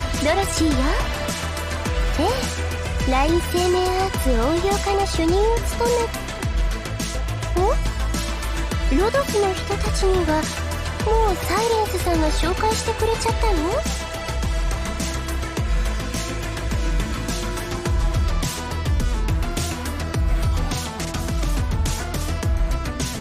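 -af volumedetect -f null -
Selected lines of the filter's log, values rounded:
mean_volume: -21.1 dB
max_volume: -8.2 dB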